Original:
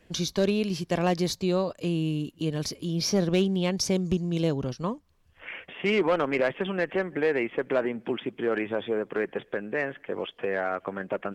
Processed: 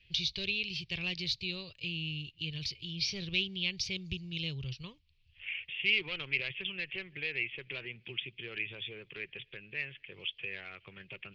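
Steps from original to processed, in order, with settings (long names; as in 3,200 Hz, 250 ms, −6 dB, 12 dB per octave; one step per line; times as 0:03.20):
drawn EQ curve 130 Hz 0 dB, 250 Hz −23 dB, 380 Hz −15 dB, 660 Hz −25 dB, 1,600 Hz −14 dB, 2,500 Hz +10 dB, 4,500 Hz +5 dB, 8,400 Hz −24 dB
level −4 dB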